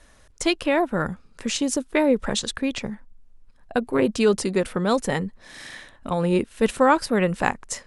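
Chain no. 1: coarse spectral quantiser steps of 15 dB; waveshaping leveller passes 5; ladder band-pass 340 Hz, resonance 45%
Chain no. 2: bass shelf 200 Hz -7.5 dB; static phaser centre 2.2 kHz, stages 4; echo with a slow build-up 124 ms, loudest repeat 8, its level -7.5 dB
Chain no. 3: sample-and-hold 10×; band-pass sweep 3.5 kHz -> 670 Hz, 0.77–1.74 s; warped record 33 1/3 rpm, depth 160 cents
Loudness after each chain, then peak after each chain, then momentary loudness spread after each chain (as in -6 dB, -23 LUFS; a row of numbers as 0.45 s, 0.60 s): -23.5 LUFS, -24.0 LUFS, -31.0 LUFS; -10.5 dBFS, -8.5 dBFS, -12.0 dBFS; 10 LU, 4 LU, 13 LU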